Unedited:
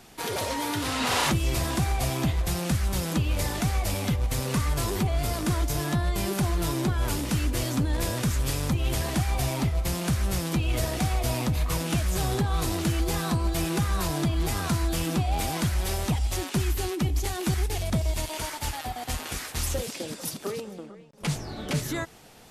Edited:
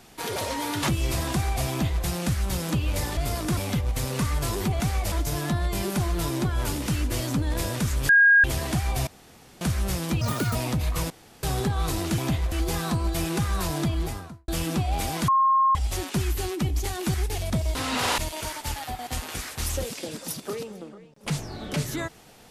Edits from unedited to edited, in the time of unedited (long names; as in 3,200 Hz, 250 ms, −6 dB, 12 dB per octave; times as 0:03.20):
0:00.83–0:01.26: move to 0:18.15
0:02.13–0:02.47: duplicate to 0:12.92
0:03.60–0:03.92: swap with 0:05.15–0:05.55
0:08.52–0:08.87: beep over 1,630 Hz −12.5 dBFS
0:09.50–0:10.04: fill with room tone
0:10.64–0:11.29: play speed 191%
0:11.84–0:12.17: fill with room tone
0:14.28–0:14.88: fade out and dull
0:15.68–0:16.15: beep over 1,070 Hz −16.5 dBFS